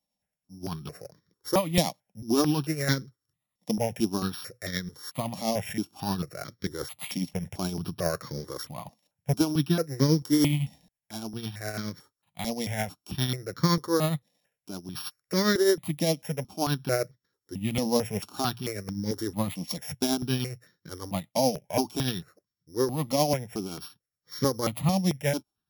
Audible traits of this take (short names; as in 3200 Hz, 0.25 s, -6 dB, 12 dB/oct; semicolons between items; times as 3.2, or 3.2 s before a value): a buzz of ramps at a fixed pitch in blocks of 8 samples; tremolo triangle 9.7 Hz, depth 55%; notches that jump at a steady rate 4.5 Hz 390–2700 Hz